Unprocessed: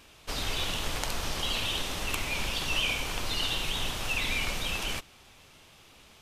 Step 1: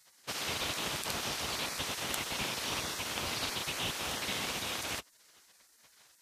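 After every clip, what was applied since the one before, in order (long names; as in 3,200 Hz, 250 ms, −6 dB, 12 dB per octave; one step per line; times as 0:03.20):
gate on every frequency bin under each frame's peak −15 dB weak
parametric band 62 Hz +5 dB 1 octave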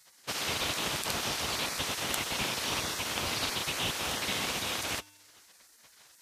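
reversed playback
upward compression, threshold −58 dBFS
reversed playback
tuned comb filter 100 Hz, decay 1.2 s, harmonics odd, mix 40%
level +7.5 dB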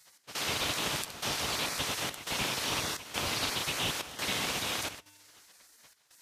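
gate pattern "x.xxxx.xxxx" 86 BPM −12 dB
on a send at −18 dB: convolution reverb, pre-delay 7 ms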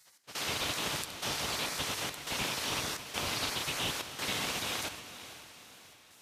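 feedback delay with all-pass diffusion 503 ms, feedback 45%, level −13 dB
level −2 dB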